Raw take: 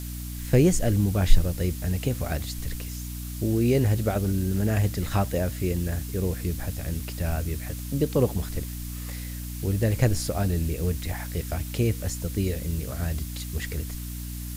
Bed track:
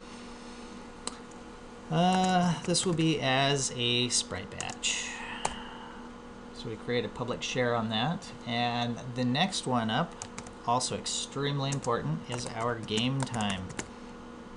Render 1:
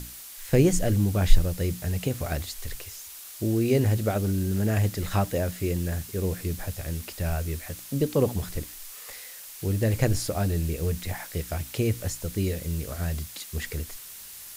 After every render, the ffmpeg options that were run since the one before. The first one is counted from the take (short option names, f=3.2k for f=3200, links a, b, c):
-af "bandreject=f=60:t=h:w=6,bandreject=f=120:t=h:w=6,bandreject=f=180:t=h:w=6,bandreject=f=240:t=h:w=6,bandreject=f=300:t=h:w=6"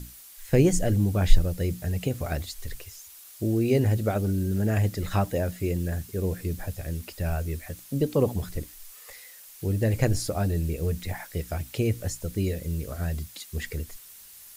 -af "afftdn=nr=7:nf=-43"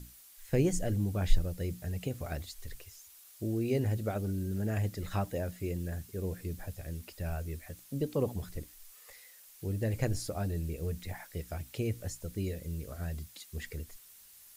-af "volume=-8dB"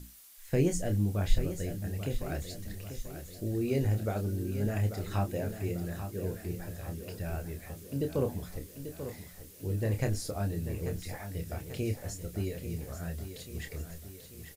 -filter_complex "[0:a]asplit=2[a][b];[b]adelay=29,volume=-7dB[c];[a][c]amix=inputs=2:normalize=0,aecho=1:1:839|1678|2517|3356|4195|5034:0.316|0.168|0.0888|0.0471|0.025|0.0132"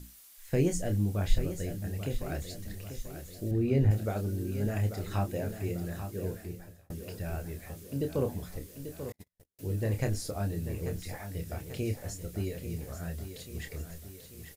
-filter_complex "[0:a]asettb=1/sr,asplit=3[a][b][c];[a]atrim=end=3.514[d];[b]atrim=start=3.51:end=3.91,asetpts=PTS-STARTPTS,afade=t=in:d=0.004:c=qsin,afade=t=out:st=0.396:d=0.004:c=qsin,bass=f=250:g=6,treble=f=4k:g=-11[e];[c]atrim=start=3.906[f];[d][e]acrossfade=d=0.004:c1=hsin:c2=qsin[g];[g][f]acrossfade=d=0.004:c1=qsin:c2=hsin,asettb=1/sr,asplit=3[h][i][j];[h]atrim=end=9.124[k];[i]atrim=start=9.12:end=9.59,asetpts=PTS-STARTPTS,afade=t=in:d=0.004:c=qsin,afade=t=out:st=0.466:d=0.004:c=qsin,agate=range=-43dB:threshold=-44dB:ratio=16:release=100:detection=peak[l];[j]atrim=start=9.586[m];[k][l]acrossfade=d=0.004:c1=hsin:c2=qsin[n];[n][m]acrossfade=d=0.004:c1=qsin:c2=hsin,asplit=2[o][p];[o]atrim=end=6.9,asetpts=PTS-STARTPTS,afade=t=out:st=6.27:d=0.63[q];[p]atrim=start=6.9,asetpts=PTS-STARTPTS,afade=t=in:d=0.004:c=hsin[r];[q][r]concat=n=2:v=0:a=1"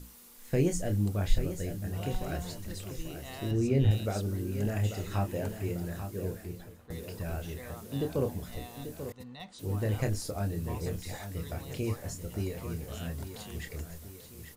-filter_complex "[1:a]volume=-18.5dB[a];[0:a][a]amix=inputs=2:normalize=0"